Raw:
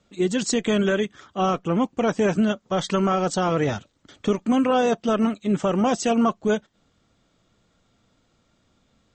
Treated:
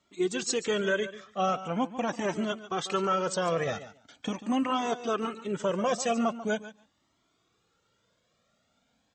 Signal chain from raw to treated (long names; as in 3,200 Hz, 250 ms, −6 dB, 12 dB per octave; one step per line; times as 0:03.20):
high-pass filter 290 Hz 6 dB per octave
on a send: repeating echo 142 ms, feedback 16%, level −14 dB
on the sum: flanger whose copies keep moving one way rising 0.42 Hz